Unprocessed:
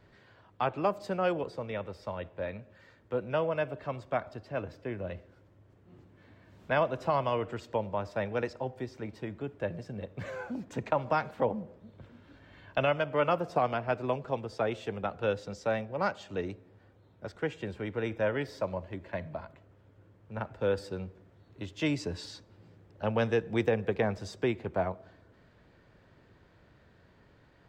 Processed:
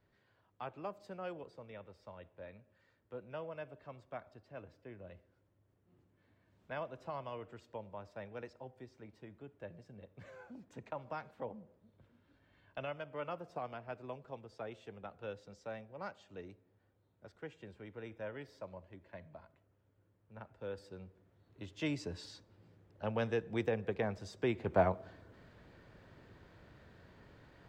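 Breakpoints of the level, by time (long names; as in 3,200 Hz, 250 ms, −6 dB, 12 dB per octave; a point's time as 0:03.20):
0:20.69 −14.5 dB
0:21.75 −7 dB
0:24.34 −7 dB
0:24.79 +1.5 dB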